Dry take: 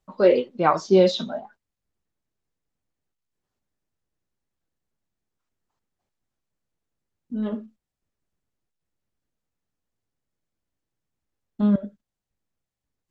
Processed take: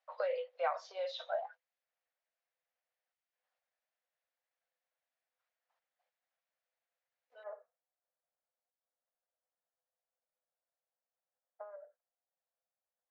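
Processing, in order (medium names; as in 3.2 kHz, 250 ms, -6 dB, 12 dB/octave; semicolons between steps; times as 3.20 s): Bessel low-pass 4 kHz, order 8, from 7.42 s 1 kHz; compression 10:1, threshold -28 dBFS, peak gain reduction 17 dB; rippled Chebyshev high-pass 490 Hz, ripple 6 dB; trim +2 dB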